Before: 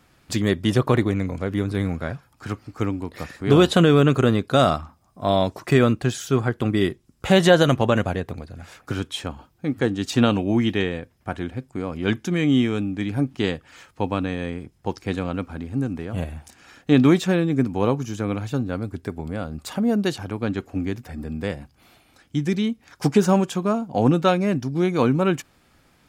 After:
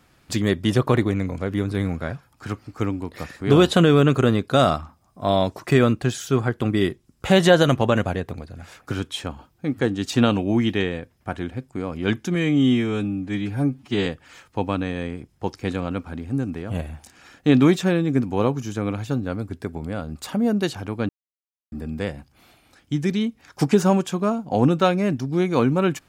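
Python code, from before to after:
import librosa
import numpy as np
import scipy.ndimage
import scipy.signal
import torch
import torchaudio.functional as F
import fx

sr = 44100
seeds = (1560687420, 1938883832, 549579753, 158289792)

y = fx.edit(x, sr, fx.stretch_span(start_s=12.35, length_s=1.14, factor=1.5),
    fx.silence(start_s=20.52, length_s=0.63), tone=tone)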